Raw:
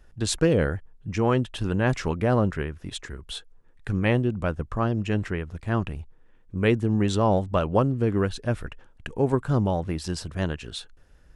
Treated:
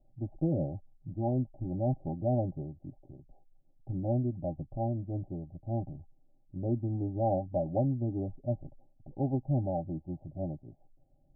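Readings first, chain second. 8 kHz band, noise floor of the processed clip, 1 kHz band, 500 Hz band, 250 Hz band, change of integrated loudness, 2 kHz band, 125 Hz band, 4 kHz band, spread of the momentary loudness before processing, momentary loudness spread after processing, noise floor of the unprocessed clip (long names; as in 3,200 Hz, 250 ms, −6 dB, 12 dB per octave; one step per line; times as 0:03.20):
below −40 dB, −65 dBFS, −9.5 dB, −9.0 dB, −8.0 dB, −8.5 dB, below −40 dB, −7.0 dB, below −40 dB, 15 LU, 13 LU, −55 dBFS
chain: Chebyshev low-pass with heavy ripple 820 Hz, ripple 9 dB
phaser with its sweep stopped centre 310 Hz, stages 8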